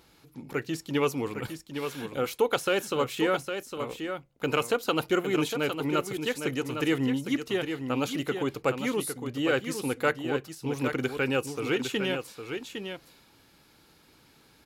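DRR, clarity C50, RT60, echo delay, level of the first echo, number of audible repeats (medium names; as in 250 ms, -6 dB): no reverb, no reverb, no reverb, 808 ms, -7.5 dB, 1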